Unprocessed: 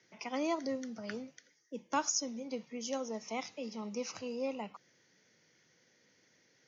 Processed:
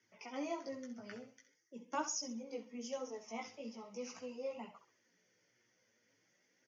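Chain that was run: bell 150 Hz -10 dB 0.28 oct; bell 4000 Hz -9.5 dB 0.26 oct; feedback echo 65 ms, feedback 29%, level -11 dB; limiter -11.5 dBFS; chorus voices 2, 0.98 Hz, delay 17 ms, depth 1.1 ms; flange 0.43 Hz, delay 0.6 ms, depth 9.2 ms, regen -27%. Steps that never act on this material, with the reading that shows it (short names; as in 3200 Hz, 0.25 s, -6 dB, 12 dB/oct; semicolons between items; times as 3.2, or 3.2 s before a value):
limiter -11.5 dBFS: input peak -20.5 dBFS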